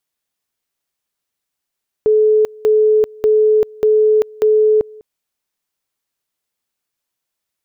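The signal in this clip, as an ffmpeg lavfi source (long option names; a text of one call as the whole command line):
ffmpeg -f lavfi -i "aevalsrc='pow(10,(-8.5-25.5*gte(mod(t,0.59),0.39))/20)*sin(2*PI*430*t)':duration=2.95:sample_rate=44100" out.wav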